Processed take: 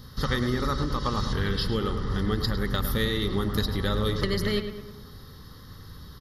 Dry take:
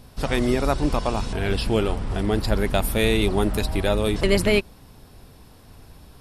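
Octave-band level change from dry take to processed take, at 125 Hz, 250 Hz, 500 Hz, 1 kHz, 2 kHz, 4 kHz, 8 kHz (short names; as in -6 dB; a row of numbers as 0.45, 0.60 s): -1.5, -4.5, -7.5, -4.0, -5.0, -1.5, -8.5 dB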